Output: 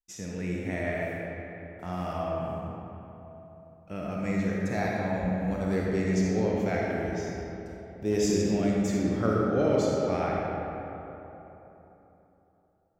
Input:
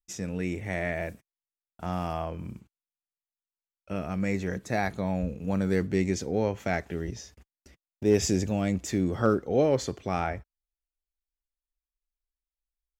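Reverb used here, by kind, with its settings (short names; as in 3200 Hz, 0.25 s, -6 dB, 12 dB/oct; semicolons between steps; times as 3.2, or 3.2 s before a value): digital reverb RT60 3.5 s, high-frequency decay 0.5×, pre-delay 10 ms, DRR -3.5 dB; gain -5 dB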